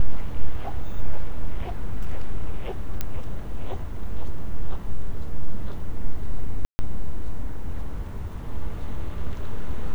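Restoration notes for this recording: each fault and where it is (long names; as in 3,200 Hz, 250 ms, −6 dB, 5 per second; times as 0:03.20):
0:03.01: click −11 dBFS
0:06.65–0:06.79: drop-out 140 ms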